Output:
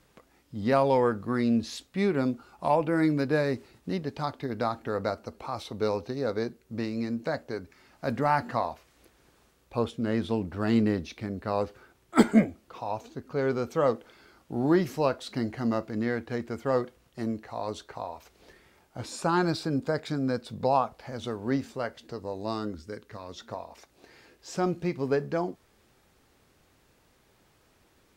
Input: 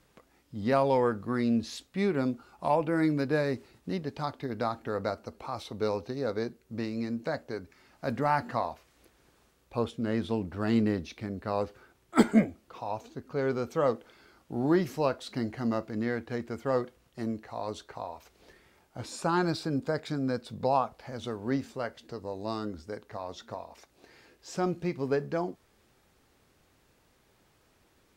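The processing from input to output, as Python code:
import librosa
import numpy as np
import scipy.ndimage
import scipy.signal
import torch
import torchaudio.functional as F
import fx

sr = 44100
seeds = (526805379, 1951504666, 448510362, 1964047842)

y = fx.peak_eq(x, sr, hz=750.0, db=-11.5, octaves=0.76, at=(22.75, 23.38))
y = y * 10.0 ** (2.0 / 20.0)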